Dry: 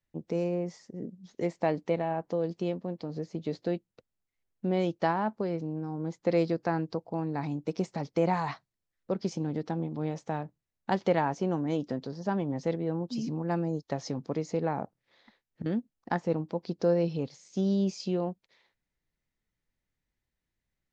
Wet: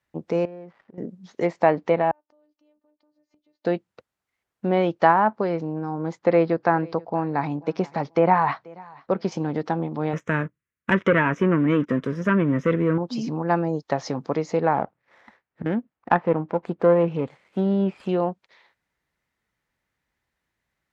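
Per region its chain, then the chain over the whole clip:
0.45–0.98 s: dead-time distortion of 0.094 ms + low-pass 2.2 kHz + compression 2:1, threshold -56 dBFS
2.11–3.65 s: robot voice 300 Hz + compression 2:1, threshold -44 dBFS + inverted gate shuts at -41 dBFS, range -29 dB
6.19–9.32 s: distance through air 93 m + feedback delay 485 ms, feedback 24%, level -24 dB
10.13–12.98 s: waveshaping leveller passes 2 + static phaser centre 1.9 kHz, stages 4
14.74–18.09 s: low-pass 3 kHz 24 dB/octave + sliding maximum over 5 samples
whole clip: high-pass 50 Hz; peaking EQ 1.2 kHz +10 dB 2.5 oct; low-pass that closes with the level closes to 2.7 kHz, closed at -18 dBFS; trim +3.5 dB

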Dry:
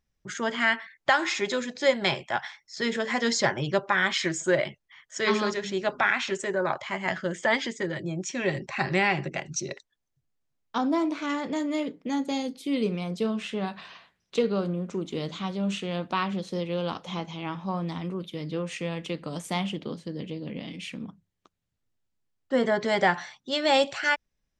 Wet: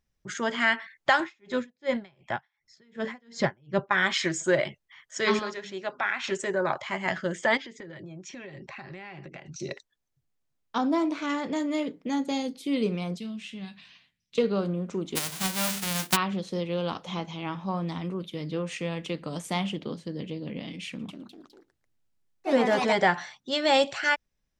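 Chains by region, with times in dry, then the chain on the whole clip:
1.20–3.91 s: tone controls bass +9 dB, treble -9 dB + logarithmic tremolo 2.7 Hz, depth 38 dB
5.39–6.24 s: high-pass 1.4 kHz 6 dB/octave + tilt EQ -3 dB/octave
7.57–9.60 s: low-pass 4.7 kHz + compression 16:1, threshold -38 dBFS
13.18–14.38 s: high-order bell 720 Hz -13.5 dB 2.5 oct + feedback comb 130 Hz, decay 0.16 s
15.15–16.15 s: formants flattened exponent 0.1 + hum notches 50/100/150/200/250/300/350/400/450/500 Hz + transient shaper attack +8 dB, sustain +1 dB
20.88–23.07 s: ever faster or slower copies 206 ms, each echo +3 st, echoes 3, each echo -6 dB + delay 112 ms -23.5 dB
whole clip: none

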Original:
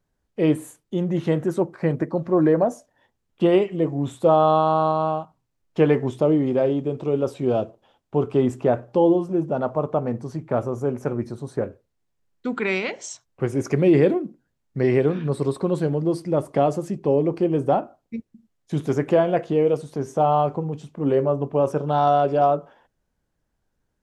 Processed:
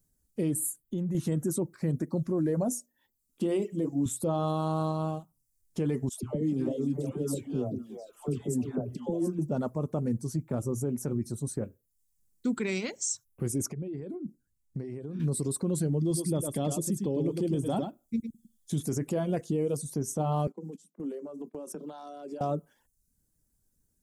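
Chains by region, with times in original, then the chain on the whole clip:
0.59–1.15 s: peaking EQ 5.8 kHz -10.5 dB 0.42 oct + compression 2.5:1, threshold -30 dBFS
2.68–4.06 s: resonant low shelf 170 Hz -7.5 dB, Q 1.5 + hum notches 60/120/180/240/300/360/420/480/540/600 Hz
6.09–9.39 s: compression 2.5:1, threshold -25 dBFS + phase dispersion lows, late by 143 ms, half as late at 930 Hz + repeats whose band climbs or falls 177 ms, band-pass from 230 Hz, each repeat 1.4 oct, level -4 dB
13.66–15.20 s: compression 12:1, threshold -30 dBFS + treble shelf 2.7 kHz -9.5 dB
16.00–18.83 s: peaking EQ 3.4 kHz +14 dB 0.23 oct + delay 104 ms -5.5 dB
20.47–22.41 s: steep high-pass 170 Hz 96 dB/octave + gate -35 dBFS, range -14 dB + compression 4:1, threshold -32 dBFS
whole clip: reverb removal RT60 0.52 s; FFT filter 240 Hz 0 dB, 740 Hz -13 dB, 3 kHz -9 dB, 9.1 kHz +14 dB; peak limiter -22 dBFS; trim +1 dB

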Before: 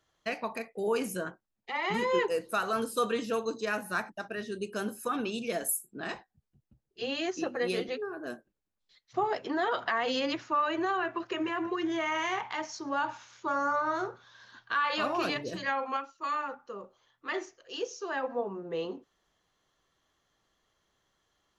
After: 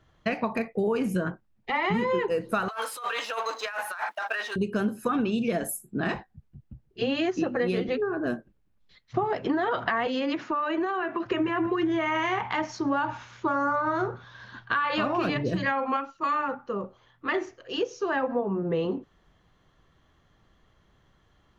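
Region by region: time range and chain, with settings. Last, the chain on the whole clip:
2.68–4.56 s: companding laws mixed up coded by mu + high-pass 740 Hz 24 dB/octave + compressor with a negative ratio -40 dBFS
10.07–11.26 s: high-pass 200 Hz 24 dB/octave + compression 2.5:1, threshold -36 dBFS
whole clip: tone controls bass +11 dB, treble -12 dB; compression, threshold -32 dBFS; trim +9 dB

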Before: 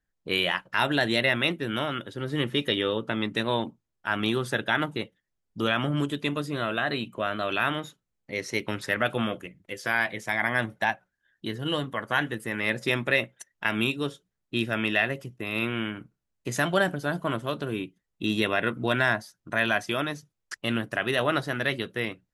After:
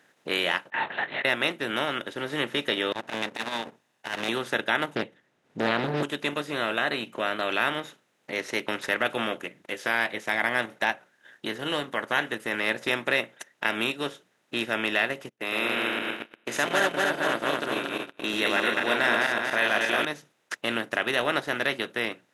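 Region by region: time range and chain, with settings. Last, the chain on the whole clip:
0.70–1.25 s: two resonant band-passes 1.3 kHz, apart 1 oct + comb 5.6 ms + LPC vocoder at 8 kHz whisper
2.92–4.29 s: comb filter that takes the minimum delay 1.1 ms + transformer saturation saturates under 430 Hz
4.95–6.03 s: RIAA curve playback + loudspeaker Doppler distortion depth 0.77 ms
15.29–20.05 s: backward echo that repeats 117 ms, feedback 65%, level -1.5 dB + high-pass 310 Hz 6 dB/octave + gate -38 dBFS, range -37 dB
whole clip: spectral levelling over time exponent 0.6; high-pass 280 Hz 12 dB/octave; transient shaper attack 0 dB, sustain -6 dB; trim -3.5 dB

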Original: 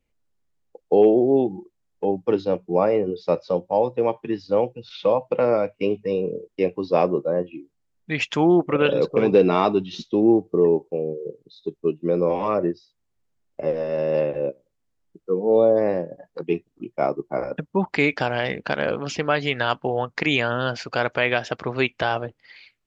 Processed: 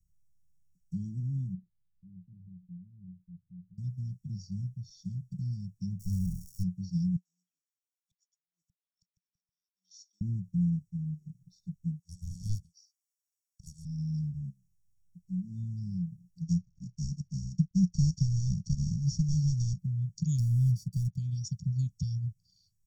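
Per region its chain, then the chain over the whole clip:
1.54–3.78 s: compression 2.5:1, threshold -35 dBFS + rippled Chebyshev low-pass 2.4 kHz, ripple 6 dB
5.99–6.62 s: comb filter that takes the minimum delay 0.35 ms + overload inside the chain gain 16 dB + crackle 510 per s -39 dBFS
7.16–10.21 s: high-pass 900 Hz 24 dB/octave + treble shelf 3.1 kHz -10 dB + inverted gate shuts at -28 dBFS, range -32 dB
11.99–13.85 s: steep high-pass 710 Hz + loudspeaker Doppler distortion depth 0.74 ms
16.41–19.79 s: CVSD coder 32 kbps + bass shelf 190 Hz +5.5 dB
20.38–21.16 s: low-pass 2.5 kHz + waveshaping leveller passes 1
whole clip: Chebyshev band-stop 180–5500 Hz, order 5; comb 0.9 ms, depth 92%

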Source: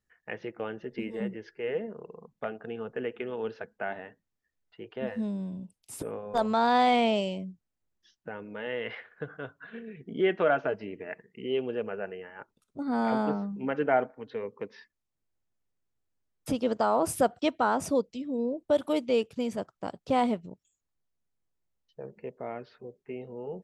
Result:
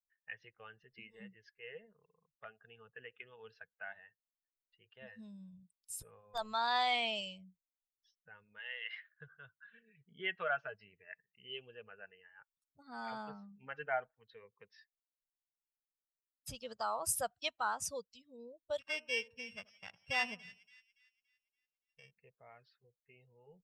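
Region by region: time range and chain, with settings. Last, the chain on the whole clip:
8.58–9.12 s: high-pass 500 Hz + treble shelf 4.1 kHz +8.5 dB + whistle 630 Hz -65 dBFS
18.79–22.11 s: sorted samples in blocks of 16 samples + low-pass 3.4 kHz + two-band feedback delay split 1.5 kHz, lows 81 ms, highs 285 ms, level -13.5 dB
whole clip: expander on every frequency bin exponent 1.5; amplifier tone stack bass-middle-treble 10-0-10; trim +3 dB

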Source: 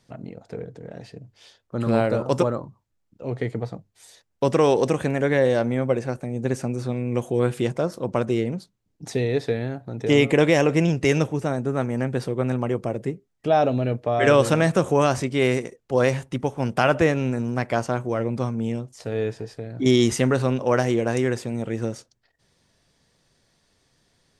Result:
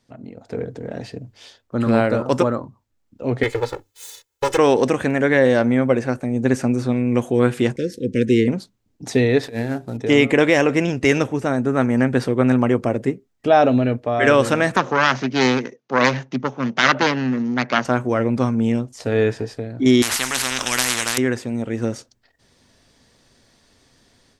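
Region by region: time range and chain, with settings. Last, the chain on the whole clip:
3.43–4.58 s: comb filter that takes the minimum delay 2 ms + tilt EQ +2.5 dB/octave + comb 2.3 ms, depth 70%
7.76–8.48 s: expander -40 dBFS + Chebyshev band-stop 490–1700 Hz, order 4
9.43–9.97 s: CVSD coder 64 kbps + compressor with a negative ratio -29 dBFS, ratio -0.5 + hum notches 50/100/150/200/250/300/350/400/450 Hz
14.76–17.85 s: self-modulated delay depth 0.81 ms + Chebyshev band-pass 130–6400 Hz, order 5
20.02–21.18 s: tone controls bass +4 dB, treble +12 dB + spectrum-flattening compressor 10:1
whole clip: graphic EQ with 31 bands 160 Hz -7 dB, 250 Hz +6 dB, 10 kHz -3 dB; level rider; dynamic bell 1.7 kHz, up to +5 dB, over -34 dBFS, Q 1.2; trim -3 dB

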